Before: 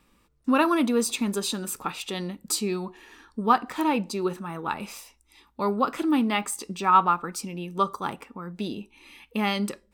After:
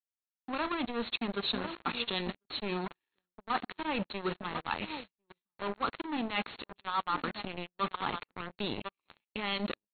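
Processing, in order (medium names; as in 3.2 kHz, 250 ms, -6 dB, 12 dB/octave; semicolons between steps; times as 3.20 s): high-pass 69 Hz 24 dB/octave; echo from a far wall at 180 m, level -15 dB; reverse; compression 16:1, threshold -30 dBFS, peak gain reduction 18 dB; reverse; treble shelf 2 kHz +7 dB; power-law waveshaper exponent 2; in parallel at -9 dB: saturation -25.5 dBFS, distortion -14 dB; on the sum: waveshaping leveller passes 5; brick-wall FIR low-pass 4.4 kHz; trim -7 dB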